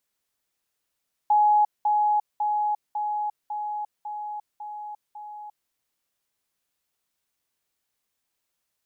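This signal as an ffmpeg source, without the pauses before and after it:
-f lavfi -i "aevalsrc='pow(10,(-15.5-3*floor(t/0.55))/20)*sin(2*PI*839*t)*clip(min(mod(t,0.55),0.35-mod(t,0.55))/0.005,0,1)':d=4.4:s=44100"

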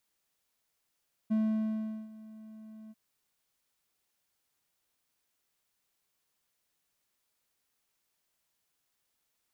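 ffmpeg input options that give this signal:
-f lavfi -i "aevalsrc='0.075*(1-4*abs(mod(218*t+0.25,1)-0.5))':d=1.642:s=44100,afade=t=in:d=0.019,afade=t=out:st=0.019:d=0.762:silence=0.0841,afade=t=out:st=1.61:d=0.032"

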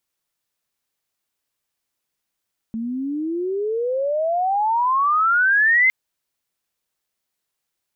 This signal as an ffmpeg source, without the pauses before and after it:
-f lavfi -i "aevalsrc='pow(10,(-23.5+11.5*t/3.16)/20)*sin(2*PI*220*3.16/log(2100/220)*(exp(log(2100/220)*t/3.16)-1))':d=3.16:s=44100"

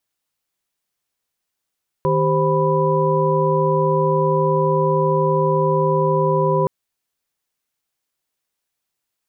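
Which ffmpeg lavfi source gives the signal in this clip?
-f lavfi -i "aevalsrc='0.1*(sin(2*PI*155.56*t)+sin(2*PI*392*t)+sin(2*PI*523.25*t)+sin(2*PI*987.77*t))':d=4.62:s=44100"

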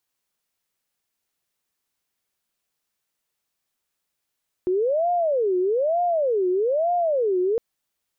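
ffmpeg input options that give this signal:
-f lavfi -i "aevalsrc='0.119*sin(2*PI*(534.5*t-173.5/(2*PI*1.1)*sin(2*PI*1.1*t)))':d=2.91:s=44100"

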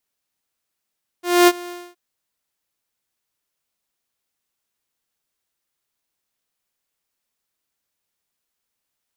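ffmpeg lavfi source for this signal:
-f lavfi -i "aevalsrc='0.531*(2*mod(352*t,1)-1)':d=0.72:s=44100,afade=t=in:d=0.245,afade=t=out:st=0.245:d=0.043:silence=0.075,afade=t=out:st=0.48:d=0.24"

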